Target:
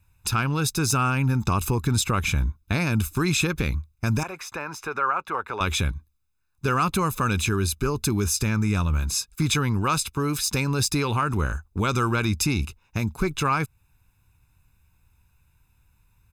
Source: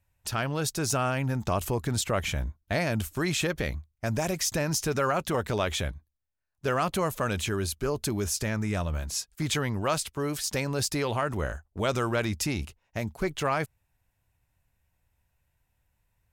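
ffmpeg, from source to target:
-filter_complex "[0:a]asettb=1/sr,asplit=3[a][b][c];[a]atrim=end=4.234[d];[b]atrim=start=4.23:end=5.61,asetpts=PTS-STARTPTS,afade=t=in:d=0.004:c=qsin,afade=t=out:st=1.376:d=0.004:c=qsin,acrossover=split=480 2200:gain=0.0708 1 0.0891[e][f][g];[e][f][g]amix=inputs=3:normalize=0[h];[c]atrim=start=5.606[i];[d][h]acrossfade=d=0.004:c1=hsin:c2=qsin[j];[j][i]acrossfade=d=0.004:c1=qsin:c2=hsin,asplit=2[k][l];[l]acompressor=threshold=-36dB:ratio=6,volume=2dB[m];[k][m]amix=inputs=2:normalize=0,aecho=1:1:0.8:0.73"

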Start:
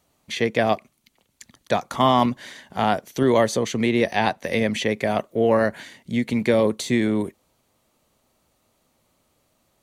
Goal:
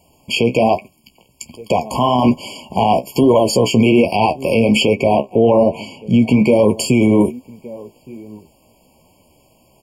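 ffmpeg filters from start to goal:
-filter_complex "[0:a]asettb=1/sr,asplit=3[a][b][c];[a]atrim=end=4.954[d];[b]atrim=start=4.95:end=6.48,asetpts=PTS-STARTPTS,afade=t=in:d=0.004:c=qsin,afade=t=out:st=1.526:d=0.004:c=qsin,aemphasis=mode=reproduction:type=cd[e];[c]atrim=start=6.476[f];[d][e]acrossfade=d=0.004:c1=hsin:c2=qsin[g];[g][f]acrossfade=d=0.004:c1=qsin:c2=hsin,asplit=2[h][i];[i]adelay=1166,volume=-27dB,highshelf=f=4k:g=-26.2[j];[h][j]amix=inputs=2:normalize=0,flanger=delay=9.7:depth=8.2:regen=36:speed=1.2:shape=triangular,alimiter=level_in=20.5dB:limit=-1dB:release=50:level=0:latency=1,afftfilt=real='re*eq(mod(floor(b*sr/1024/1100),2),0)':imag='im*eq(mod(floor(b*sr/1024/1100),2),0)':win_size=1024:overlap=0.75,volume=-2.5dB"

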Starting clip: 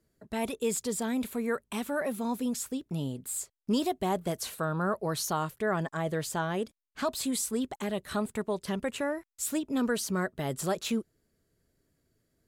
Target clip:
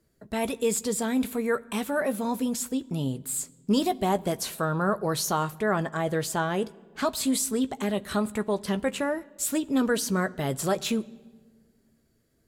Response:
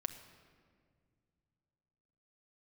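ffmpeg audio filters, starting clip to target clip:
-filter_complex "[0:a]asplit=2[a][b];[1:a]atrim=start_sample=2205,asetrate=66150,aresample=44100,adelay=15[c];[b][c]afir=irnorm=-1:irlink=0,volume=-7.5dB[d];[a][d]amix=inputs=2:normalize=0,volume=4dB"

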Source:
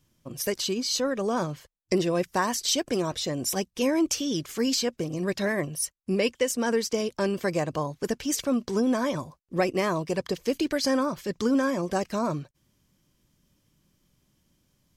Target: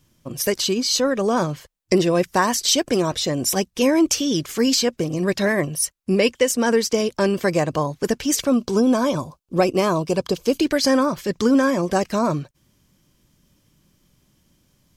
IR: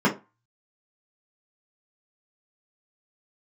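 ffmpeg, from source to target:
-filter_complex "[0:a]asettb=1/sr,asplit=3[a][b][c];[a]atrim=end=8.494[d];[b]atrim=start=8.49:end=10.6,asetpts=PTS-STARTPTS,afade=t=in:d=0.004:c=qsin,afade=t=out:st=2.106:d=0.004:c=qsin,equalizer=f=1.9k:w=5:g=-13.5[e];[c]atrim=start=10.596[f];[d][e]acrossfade=d=0.004:c1=hsin:c2=qsin[g];[g][f]acrossfade=d=0.004:c1=qsin:c2=hsin,volume=7dB"

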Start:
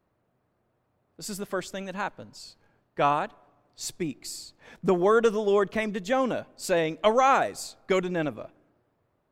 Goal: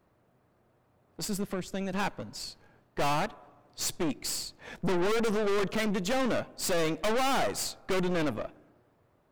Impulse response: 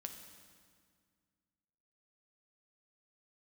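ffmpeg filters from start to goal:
-filter_complex "[0:a]asettb=1/sr,asplit=3[a][b][c];[a]atrim=end=1.244[d];[b]atrim=start=1.24:end=1.93,asetpts=PTS-STARTPTS,afade=t=in:d=0.004:c=qsin,afade=t=out:st=0.686:d=0.004:c=qsin,acrossover=split=260[e][f];[f]acompressor=threshold=-40dB:ratio=5[g];[e][g]amix=inputs=2:normalize=0[h];[c]atrim=start=1.926[i];[d][h]acrossfade=d=0.004:c1=hsin:c2=qsin[j];[j][i]acrossfade=d=0.004:c1=qsin:c2=hsin,aeval=exprs='(tanh(56.2*val(0)+0.65)-tanh(0.65))/56.2':c=same,volume=8.5dB"

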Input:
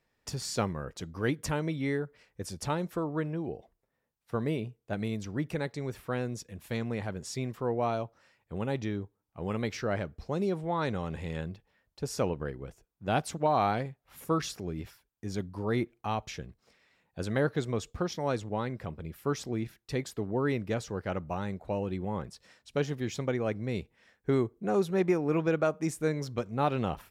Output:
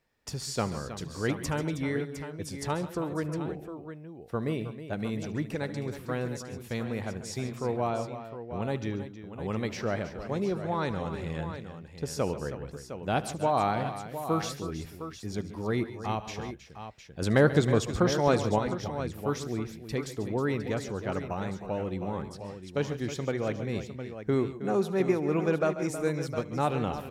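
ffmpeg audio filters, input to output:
-filter_complex "[0:a]asettb=1/sr,asplit=3[a][b][c];[a]atrim=end=7.874[d];[b]atrim=start=7.87:end=8.62,asetpts=PTS-STARTPTS,afade=t=in:d=0.004:c=qsin,afade=t=out:st=0.746:d=0.004:c=qsin,lowpass=4k[e];[c]atrim=start=8.616[f];[d][e]acrossfade=d=0.004:c1=hsin:c2=qsin[g];[g][f]acrossfade=d=0.004:c1=qsin:c2=hsin,asettb=1/sr,asplit=3[h][i][j];[h]atrim=end=17.224[k];[i]atrim=start=17.22:end=18.59,asetpts=PTS-STARTPTS,afade=t=in:d=0.004:c=qsin,afade=t=out:st=1.366:d=0.004:c=qsin,acontrast=68[l];[j]atrim=start=18.586[m];[k][l]acrossfade=d=0.004:c1=hsin:c2=qsin[n];[n][m]acrossfade=d=0.004:c1=qsin:c2=hsin,aecho=1:1:74|136|150|318|709:0.106|0.168|0.133|0.251|0.299"

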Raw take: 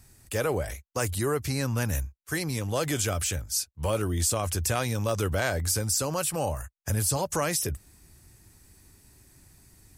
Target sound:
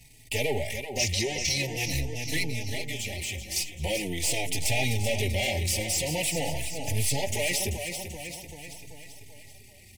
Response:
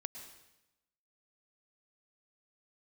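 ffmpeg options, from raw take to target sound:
-filter_complex "[0:a]aeval=exprs='if(lt(val(0),0),0.251*val(0),val(0))':c=same,asettb=1/sr,asplit=3[a][b][c];[a]atrim=end=0.994[d];[b]atrim=start=0.99:end=1.57,asetpts=PTS-STARTPTS,afade=t=in:d=0.004:c=qsin,afade=t=out:st=0.576:d=0.004:c=qsin,lowpass=f=5.8k:t=q:w=6.5[e];[c]atrim=start=1.566[f];[d][e]acrossfade=d=0.004:c1=hsin:c2=qsin[g];[g][f]acrossfade=d=0.004:c1=qsin:c2=hsin,asettb=1/sr,asplit=3[h][i][j];[h]atrim=end=2.444[k];[i]atrim=start=2.44:end=3.56,asetpts=PTS-STARTPTS,afade=t=in:d=0.004:c=qsin,afade=t=out:st=1.116:d=0.004:c=qsin,acompressor=threshold=-36dB:ratio=6[l];[j]atrim=start=3.556[m];[k][l]acrossfade=d=0.004:c1=hsin:c2=qsin[n];[n][m]acrossfade=d=0.004:c1=qsin:c2=hsin,aecho=1:1:387|774|1161|1548|1935|2322:0.299|0.167|0.0936|0.0524|0.0294|0.0164,asoftclip=type=tanh:threshold=-24dB,asuperstop=centerf=1300:order=12:qfactor=1.3,equalizer=f=2.6k:t=o:w=1.4:g=12,acontrast=68,asettb=1/sr,asplit=3[o][p][q];[o]atrim=end=4.514[r];[p]atrim=start=4.51:end=5.09,asetpts=PTS-STARTPTS,afade=t=in:d=0.004:c=qsin,afade=t=out:st=0.576:d=0.004:c=qsin,equalizer=f=770:t=o:w=0.21:g=9.5[s];[q]atrim=start=5.086[t];[r][s]acrossfade=d=0.004:c1=hsin:c2=qsin[u];[u][t]acrossfade=d=0.004:c1=qsin:c2=hsin,asplit=2[v][w];[w]adelay=4.1,afreqshift=-0.45[x];[v][x]amix=inputs=2:normalize=1"

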